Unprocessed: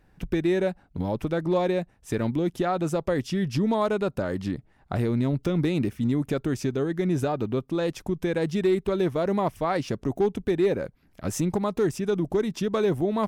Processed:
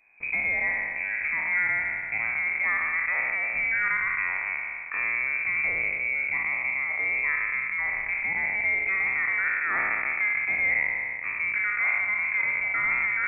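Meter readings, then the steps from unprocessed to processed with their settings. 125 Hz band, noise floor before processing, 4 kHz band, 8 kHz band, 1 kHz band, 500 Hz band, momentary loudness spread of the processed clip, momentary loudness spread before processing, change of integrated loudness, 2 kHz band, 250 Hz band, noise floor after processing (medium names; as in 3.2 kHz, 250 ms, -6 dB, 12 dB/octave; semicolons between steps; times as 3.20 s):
under -20 dB, -61 dBFS, under -30 dB, under -35 dB, -3.5 dB, -21.5 dB, 4 LU, 6 LU, +2.0 dB, +18.0 dB, -26.5 dB, -33 dBFS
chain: spectral sustain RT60 2.48 s; frequency inversion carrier 2.5 kHz; trim -5.5 dB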